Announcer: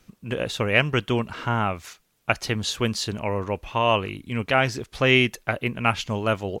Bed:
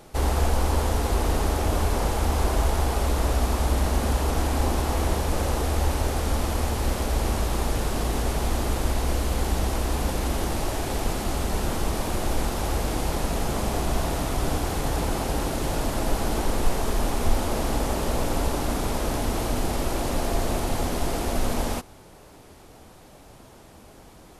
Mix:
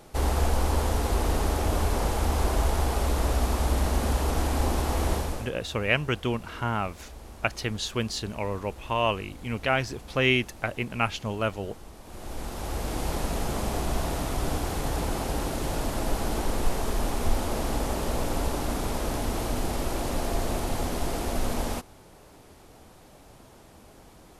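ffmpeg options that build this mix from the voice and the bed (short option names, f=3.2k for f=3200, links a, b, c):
-filter_complex "[0:a]adelay=5150,volume=-4.5dB[a];[1:a]volume=15dB,afade=t=out:st=5.14:d=0.37:silence=0.125893,afade=t=in:st=12.03:d=1.07:silence=0.141254[b];[a][b]amix=inputs=2:normalize=0"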